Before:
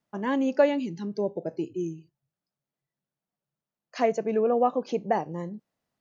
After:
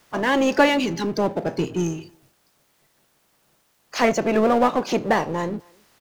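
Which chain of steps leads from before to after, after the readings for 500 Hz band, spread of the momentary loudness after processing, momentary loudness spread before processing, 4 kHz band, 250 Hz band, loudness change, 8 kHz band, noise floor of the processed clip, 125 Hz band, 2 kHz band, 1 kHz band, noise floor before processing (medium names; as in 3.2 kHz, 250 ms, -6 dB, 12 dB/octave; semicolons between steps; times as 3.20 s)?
+4.0 dB, 10 LU, 14 LU, +15.5 dB, +6.5 dB, +5.5 dB, no reading, -65 dBFS, +9.0 dB, +13.5 dB, +7.0 dB, under -85 dBFS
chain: spectral peaks clipped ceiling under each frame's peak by 15 dB; power-law waveshaper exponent 0.7; speakerphone echo 260 ms, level -27 dB; trim +2.5 dB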